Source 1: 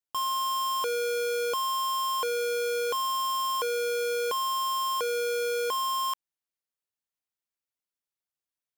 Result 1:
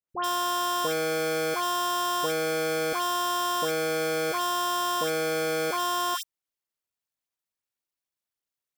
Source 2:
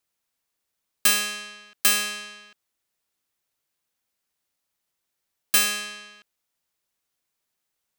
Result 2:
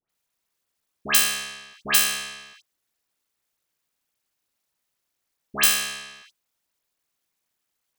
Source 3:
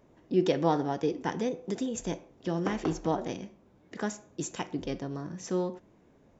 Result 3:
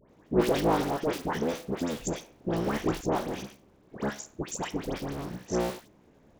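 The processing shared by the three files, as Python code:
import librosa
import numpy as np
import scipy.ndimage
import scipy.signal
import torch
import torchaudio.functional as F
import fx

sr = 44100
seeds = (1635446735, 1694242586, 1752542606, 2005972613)

y = fx.cycle_switch(x, sr, every=3, mode='muted')
y = fx.dispersion(y, sr, late='highs', ms=97.0, hz=1600.0)
y = y * librosa.db_to_amplitude(3.0)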